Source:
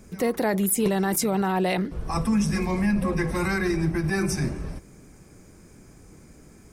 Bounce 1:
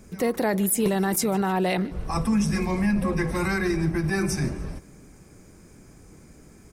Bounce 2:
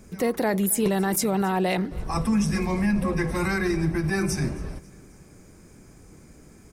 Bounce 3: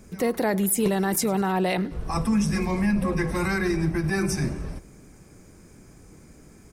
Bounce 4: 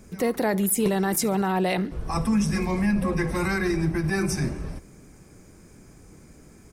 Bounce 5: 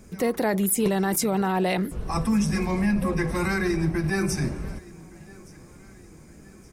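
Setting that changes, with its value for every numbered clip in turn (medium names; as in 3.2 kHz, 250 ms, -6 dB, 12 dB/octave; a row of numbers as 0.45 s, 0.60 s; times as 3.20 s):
feedback delay, time: 151 ms, 269 ms, 101 ms, 69 ms, 1168 ms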